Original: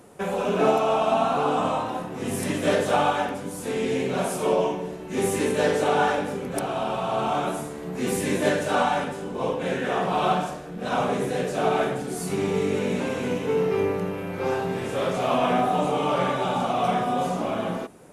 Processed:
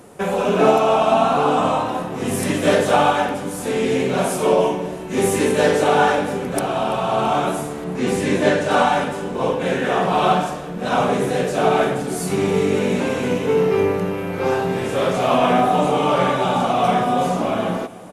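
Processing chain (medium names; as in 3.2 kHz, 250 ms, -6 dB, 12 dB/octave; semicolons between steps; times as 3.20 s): 7.84–8.71 s: distance through air 56 m; feedback delay 334 ms, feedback 60%, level -21 dB; trim +6 dB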